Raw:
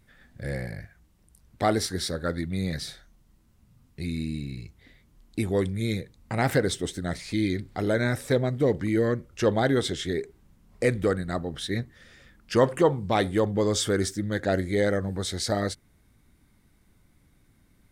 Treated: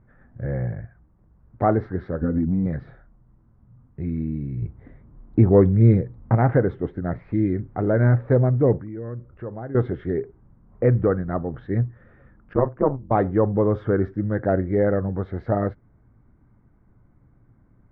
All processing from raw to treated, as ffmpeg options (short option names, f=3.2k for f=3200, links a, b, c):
-filter_complex "[0:a]asettb=1/sr,asplit=3[a][b][c];[a]atrim=end=2.214[d];[b]atrim=start=2.21:end=2.66,asetpts=PTS-STARTPTS,afade=t=in:d=0.004:c=qsin,afade=t=out:st=0.446:d=0.004:c=qsin,lowshelf=f=440:t=q:w=1.5:g=10,aecho=1:1:4.1:0.79,atrim=end_sample=19845,acompressor=threshold=-22dB:ratio=12:attack=3.2:release=140:knee=1:detection=peak[e];[c]atrim=start=2.656[f];[d][e]acrossfade=d=0.004:c1=hsin:c2=qsin[g];[g][f]acrossfade=d=0.004:c1=qsin:c2=hsin,asettb=1/sr,asplit=3[h][i][j];[h]atrim=end=4.624[k];[i]atrim=start=4.62:end=6.35,asetpts=PTS-STARTPTS,afade=t=in:d=0.004:c=qsin,afade=t=out:st=1.726:d=0.004:c=qsin,equalizer=f=1.7k:t=o:w=2.1:g=-3,acontrast=78[l];[j]atrim=start=6.346[m];[k][l]acrossfade=d=0.004:c1=hsin:c2=qsin[n];[n][m]acrossfade=d=0.004:c1=qsin:c2=hsin,asettb=1/sr,asplit=3[o][p][q];[o]atrim=end=8.784[r];[p]atrim=start=8.78:end=9.75,asetpts=PTS-STARTPTS,afade=t=in:d=0.004:c=qsin,afade=t=out:st=0.966:d=0.004:c=qsin,lowpass=3.7k,acompressor=threshold=-47dB:ratio=2:attack=3.2:release=140:knee=1:detection=peak[s];[q]atrim=start=9.746[t];[r][s]acrossfade=d=0.004:c1=hsin:c2=qsin[u];[u][t]acrossfade=d=0.004:c1=qsin:c2=hsin,asettb=1/sr,asplit=3[v][w][x];[v]atrim=end=12.534[y];[w]atrim=start=12.53:end=13.11,asetpts=PTS-STARTPTS,afade=t=in:d=0.004:c=qsin,afade=t=out:st=0.576:d=0.004:c=qsin,equalizer=f=3.7k:w=2.5:g=-9,tremolo=f=140:d=0.974,agate=range=-10dB:threshold=-32dB:ratio=16:release=100:detection=peak[z];[x]atrim=start=13.106[aa];[y][z]acrossfade=d=0.004:c1=hsin:c2=qsin[ab];[ab][aa]acrossfade=d=0.004:c1=qsin:c2=hsin,lowpass=f=1.4k:w=0.5412,lowpass=f=1.4k:w=1.3066,equalizer=f=120:w=7.3:g=9.5,volume=4dB"